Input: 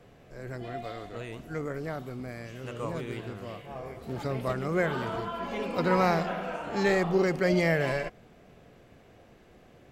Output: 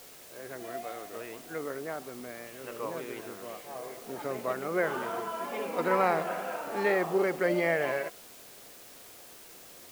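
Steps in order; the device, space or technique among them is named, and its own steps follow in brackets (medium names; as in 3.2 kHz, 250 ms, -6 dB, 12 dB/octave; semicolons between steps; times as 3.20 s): wax cylinder (band-pass 320–2600 Hz; wow and flutter; white noise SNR 18 dB)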